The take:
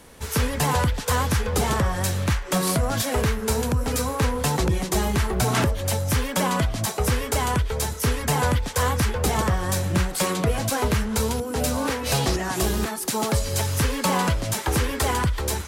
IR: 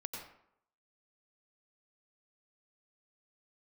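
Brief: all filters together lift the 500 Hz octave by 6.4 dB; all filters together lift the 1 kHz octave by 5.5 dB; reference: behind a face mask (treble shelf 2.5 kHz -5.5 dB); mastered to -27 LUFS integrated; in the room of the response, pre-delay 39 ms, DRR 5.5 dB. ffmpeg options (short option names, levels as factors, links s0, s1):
-filter_complex "[0:a]equalizer=f=500:t=o:g=6.5,equalizer=f=1000:t=o:g=5.5,asplit=2[s0][s1];[1:a]atrim=start_sample=2205,adelay=39[s2];[s1][s2]afir=irnorm=-1:irlink=0,volume=0.596[s3];[s0][s3]amix=inputs=2:normalize=0,highshelf=f=2500:g=-5.5,volume=0.447"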